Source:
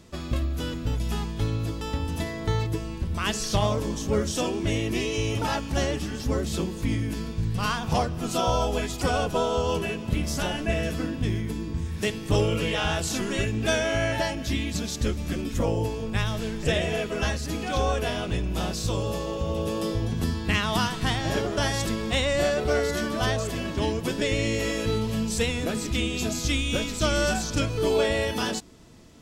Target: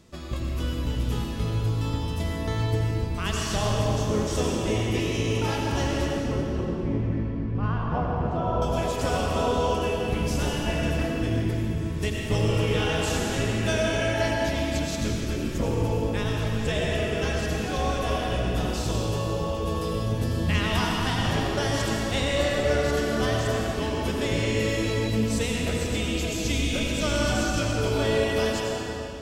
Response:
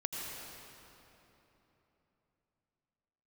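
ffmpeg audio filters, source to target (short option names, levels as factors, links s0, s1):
-filter_complex "[0:a]asettb=1/sr,asplit=3[s0][s1][s2];[s0]atrim=end=6.094[s3];[s1]atrim=start=6.09:end=8.62,asetpts=PTS-STARTPTS,afade=t=in:d=0.004:c=qsin,afade=t=out:st=2.526:d=0.004:c=qsin,lowpass=1300[s4];[s2]atrim=start=8.616[s5];[s3][s4]acrossfade=d=0.004:c1=hsin:c2=qsin[s6];[s6][s5]acrossfade=d=0.004:c1=qsin:c2=hsin[s7];[1:a]atrim=start_sample=2205[s8];[s7][s8]afir=irnorm=-1:irlink=0,volume=0.75"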